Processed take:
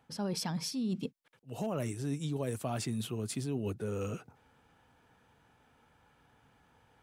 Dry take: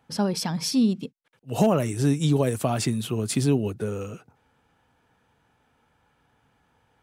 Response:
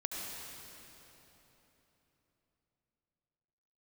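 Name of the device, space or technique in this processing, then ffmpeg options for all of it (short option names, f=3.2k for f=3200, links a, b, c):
compression on the reversed sound: -af "areverse,acompressor=threshold=-32dB:ratio=8,areverse"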